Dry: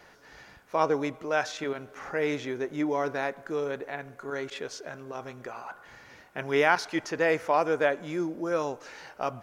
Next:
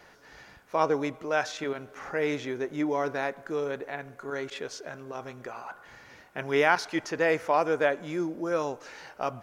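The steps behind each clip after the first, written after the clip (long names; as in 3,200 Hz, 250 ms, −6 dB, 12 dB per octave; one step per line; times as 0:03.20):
no processing that can be heard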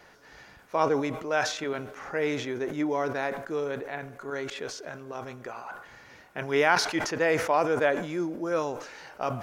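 level that may fall only so fast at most 76 dB per second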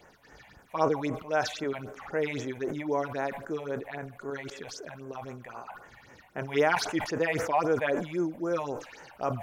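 all-pass phaser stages 6, 3.8 Hz, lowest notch 340–4,400 Hz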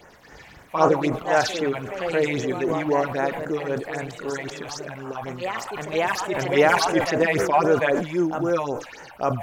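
delay with pitch and tempo change per echo 105 ms, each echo +2 semitones, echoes 2, each echo −6 dB
level +7 dB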